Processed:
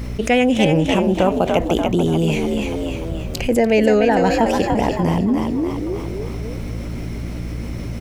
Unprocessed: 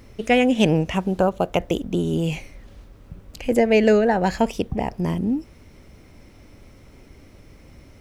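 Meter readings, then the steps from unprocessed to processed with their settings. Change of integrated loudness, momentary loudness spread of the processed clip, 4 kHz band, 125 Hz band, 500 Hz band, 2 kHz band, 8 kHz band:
+2.0 dB, 14 LU, +4.5 dB, +5.5 dB, +3.5 dB, +3.5 dB, +6.5 dB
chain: mains hum 60 Hz, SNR 20 dB
on a send: echo with shifted repeats 292 ms, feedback 44%, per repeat +54 Hz, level −6.5 dB
on the sum: envelope flattener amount 50%

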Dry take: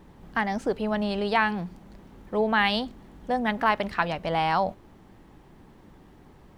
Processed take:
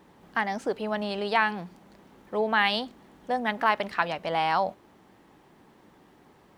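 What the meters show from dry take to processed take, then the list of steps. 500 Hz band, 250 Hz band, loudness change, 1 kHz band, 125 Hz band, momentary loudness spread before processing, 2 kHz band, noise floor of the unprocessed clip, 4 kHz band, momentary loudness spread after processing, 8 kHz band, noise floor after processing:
−1.5 dB, −5.5 dB, −1.0 dB, −0.5 dB, −6.5 dB, 9 LU, 0.0 dB, −53 dBFS, 0.0 dB, 9 LU, can't be measured, −58 dBFS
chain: high-pass filter 340 Hz 6 dB per octave

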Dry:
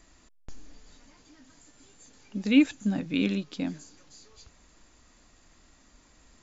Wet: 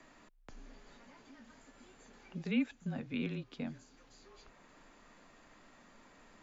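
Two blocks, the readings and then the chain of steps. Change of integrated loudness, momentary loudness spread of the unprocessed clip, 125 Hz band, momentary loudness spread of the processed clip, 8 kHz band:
−11.5 dB, 14 LU, −6.0 dB, 24 LU, can't be measured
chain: bass and treble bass −7 dB, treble −11 dB
frequency shifter −30 Hz
multiband upward and downward compressor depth 40%
level −5 dB

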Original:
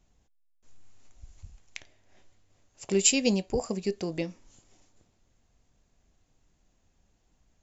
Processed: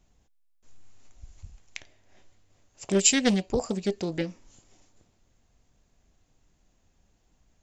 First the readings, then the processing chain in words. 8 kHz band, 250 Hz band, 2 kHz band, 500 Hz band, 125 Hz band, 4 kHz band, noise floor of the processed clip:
can't be measured, +2.5 dB, +3.5 dB, +1.0 dB, +3.0 dB, +2.0 dB, −69 dBFS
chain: highs frequency-modulated by the lows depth 0.35 ms
level +2 dB

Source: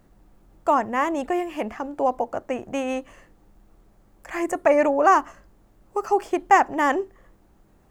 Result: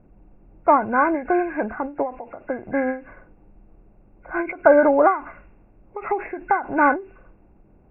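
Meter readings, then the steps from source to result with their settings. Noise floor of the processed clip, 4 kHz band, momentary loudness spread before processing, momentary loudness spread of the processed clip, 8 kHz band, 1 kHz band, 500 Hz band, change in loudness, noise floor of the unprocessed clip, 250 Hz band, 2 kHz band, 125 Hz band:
−54 dBFS, below −25 dB, 13 LU, 15 LU, below −40 dB, 0.0 dB, +3.0 dB, +2.0 dB, −58 dBFS, +2.5 dB, +3.0 dB, can't be measured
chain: hearing-aid frequency compression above 1,400 Hz 4 to 1
low-pass that shuts in the quiet parts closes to 700 Hz, open at −18.5 dBFS
every ending faded ahead of time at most 160 dB per second
level +4.5 dB

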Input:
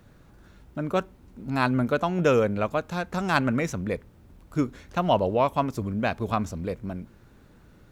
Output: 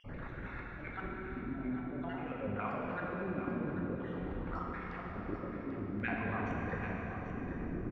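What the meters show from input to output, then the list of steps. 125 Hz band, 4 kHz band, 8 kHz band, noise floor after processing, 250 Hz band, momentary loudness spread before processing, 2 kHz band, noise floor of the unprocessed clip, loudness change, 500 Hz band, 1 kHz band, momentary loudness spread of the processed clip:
−11.0 dB, below −20 dB, below −30 dB, −45 dBFS, −10.0 dB, 12 LU, −9.0 dB, −55 dBFS, −13.0 dB, −15.5 dB, −13.5 dB, 6 LU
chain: time-frequency cells dropped at random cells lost 38%
dynamic equaliser 550 Hz, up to +6 dB, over −41 dBFS, Q 2.5
output level in coarse steps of 20 dB
parametric band 7,000 Hz −10 dB 1.8 octaves
brickwall limiter −23 dBFS, peak gain reduction 11.5 dB
volume swells 715 ms
reversed playback
downward compressor 6 to 1, threshold −58 dBFS, peak gain reduction 19 dB
reversed playback
transient designer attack −3 dB, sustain +10 dB
auto-filter low-pass square 0.5 Hz 340–2,100 Hz
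on a send: single-tap delay 790 ms −9.5 dB
on the sum: dense smooth reverb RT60 4.6 s, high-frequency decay 0.85×, DRR −3 dB
level +17.5 dB

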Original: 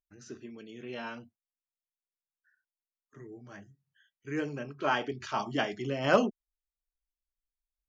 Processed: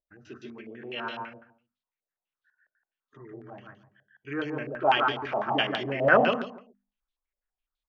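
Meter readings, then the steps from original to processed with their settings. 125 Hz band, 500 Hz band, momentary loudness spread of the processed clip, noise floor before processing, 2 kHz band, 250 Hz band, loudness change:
+1.5 dB, +5.0 dB, 23 LU, below −85 dBFS, +8.0 dB, +1.5 dB, +5.5 dB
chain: mains-hum notches 50/100/150/200/250 Hz
repeating echo 145 ms, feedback 22%, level −4 dB
low-pass on a step sequencer 12 Hz 600–3,700 Hz

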